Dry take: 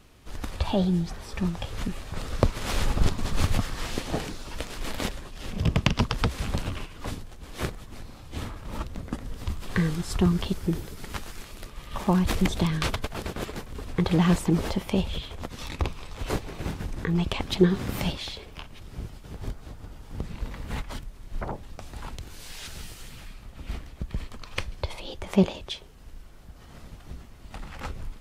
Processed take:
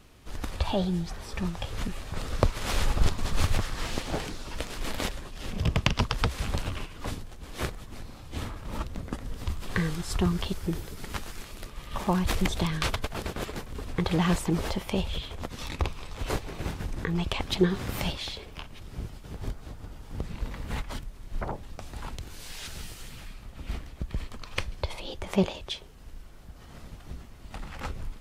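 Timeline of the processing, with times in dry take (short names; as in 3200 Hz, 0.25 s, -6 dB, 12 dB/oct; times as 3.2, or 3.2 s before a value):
3.52–4.6 Doppler distortion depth 0.83 ms
whole clip: dynamic EQ 220 Hz, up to -5 dB, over -35 dBFS, Q 0.73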